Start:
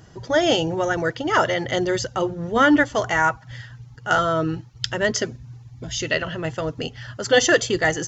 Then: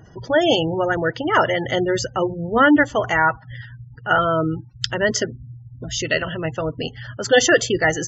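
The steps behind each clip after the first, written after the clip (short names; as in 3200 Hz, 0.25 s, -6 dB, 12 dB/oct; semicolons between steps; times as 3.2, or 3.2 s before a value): spectral gate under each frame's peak -25 dB strong; gain +2 dB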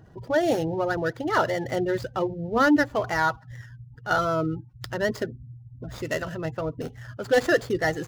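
median filter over 15 samples; gain -5 dB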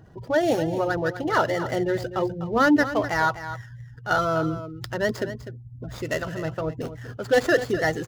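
echo 0.25 s -12 dB; gain +1 dB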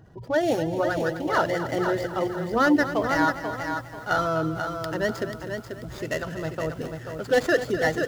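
lo-fi delay 0.488 s, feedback 35%, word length 8-bit, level -6.5 dB; gain -1.5 dB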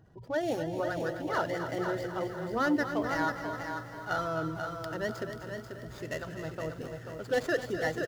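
feedback echo 0.267 s, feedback 58%, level -12 dB; gain -8 dB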